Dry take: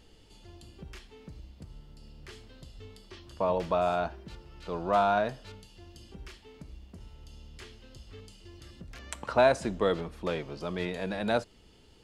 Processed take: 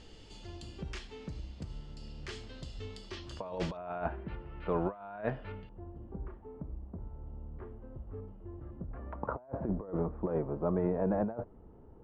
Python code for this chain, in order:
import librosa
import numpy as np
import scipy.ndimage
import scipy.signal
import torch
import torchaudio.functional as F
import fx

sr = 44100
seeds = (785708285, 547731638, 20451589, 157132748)

y = fx.lowpass(x, sr, hz=fx.steps((0.0, 8000.0), (3.77, 2300.0), (5.69, 1100.0)), slope=24)
y = fx.over_compress(y, sr, threshold_db=-33.0, ratio=-0.5)